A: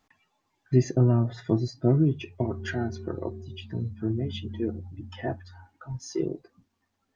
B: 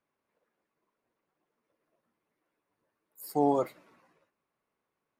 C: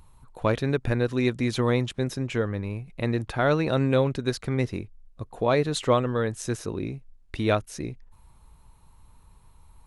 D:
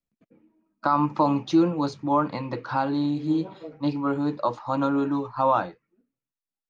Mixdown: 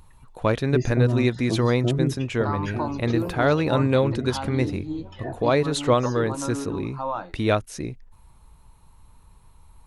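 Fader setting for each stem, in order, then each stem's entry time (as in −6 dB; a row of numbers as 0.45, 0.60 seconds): −2.5, −12.0, +2.0, −7.5 decibels; 0.00, 0.00, 0.00, 1.60 seconds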